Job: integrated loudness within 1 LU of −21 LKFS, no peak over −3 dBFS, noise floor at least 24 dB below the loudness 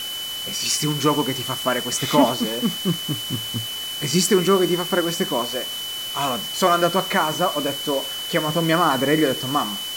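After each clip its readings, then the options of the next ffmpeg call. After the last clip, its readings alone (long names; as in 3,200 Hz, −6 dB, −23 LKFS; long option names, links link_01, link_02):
interfering tone 3,000 Hz; level of the tone −28 dBFS; background noise floor −30 dBFS; target noise floor −45 dBFS; integrated loudness −21.0 LKFS; sample peak −4.0 dBFS; target loudness −21.0 LKFS
→ -af "bandreject=frequency=3000:width=30"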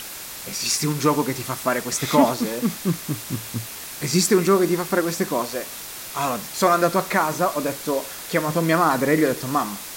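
interfering tone none found; background noise floor −36 dBFS; target noise floor −46 dBFS
→ -af "afftdn=noise_reduction=10:noise_floor=-36"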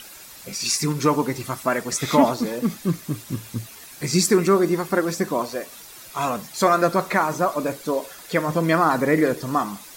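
background noise floor −43 dBFS; target noise floor −46 dBFS
→ -af "afftdn=noise_reduction=6:noise_floor=-43"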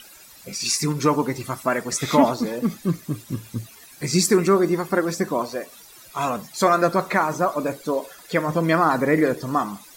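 background noise floor −47 dBFS; integrated loudness −22.0 LKFS; sample peak −4.5 dBFS; target loudness −21.0 LKFS
→ -af "volume=1dB"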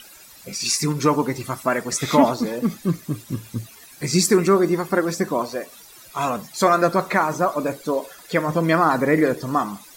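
integrated loudness −21.0 LKFS; sample peak −3.5 dBFS; background noise floor −46 dBFS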